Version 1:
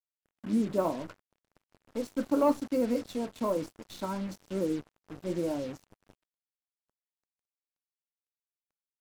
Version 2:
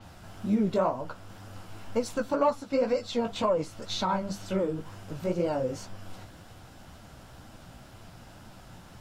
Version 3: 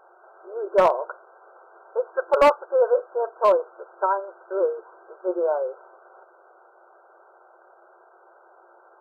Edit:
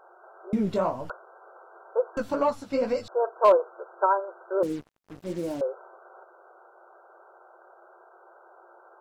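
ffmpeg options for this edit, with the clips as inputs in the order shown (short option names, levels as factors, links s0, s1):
-filter_complex "[1:a]asplit=2[s0][s1];[2:a]asplit=4[s2][s3][s4][s5];[s2]atrim=end=0.532[s6];[s0]atrim=start=0.528:end=1.102[s7];[s3]atrim=start=1.098:end=2.172[s8];[s1]atrim=start=2.168:end=3.082[s9];[s4]atrim=start=3.078:end=4.632[s10];[0:a]atrim=start=4.628:end=5.612[s11];[s5]atrim=start=5.608[s12];[s6][s7]acrossfade=d=0.004:c1=hsin:c2=hsin[s13];[s13][s8]acrossfade=d=0.004:c1=hsin:c2=hsin[s14];[s14][s9]acrossfade=d=0.004:c1=hsin:c2=hsin[s15];[s15][s10]acrossfade=d=0.004:c1=hsin:c2=hsin[s16];[s16][s11]acrossfade=d=0.004:c1=hsin:c2=hsin[s17];[s17][s12]acrossfade=d=0.004:c1=hsin:c2=hsin"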